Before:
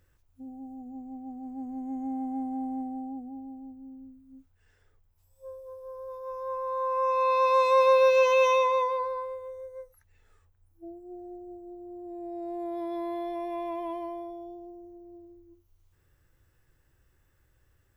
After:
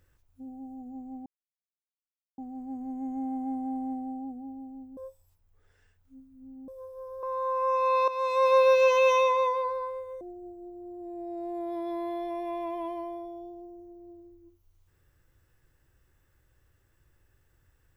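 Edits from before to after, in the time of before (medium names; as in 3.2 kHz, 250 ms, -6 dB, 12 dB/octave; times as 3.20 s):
1.26 s: insert silence 1.12 s
3.85–5.56 s: reverse
6.11–6.58 s: delete
7.43–7.93 s: fade in linear, from -13 dB
9.56–11.26 s: delete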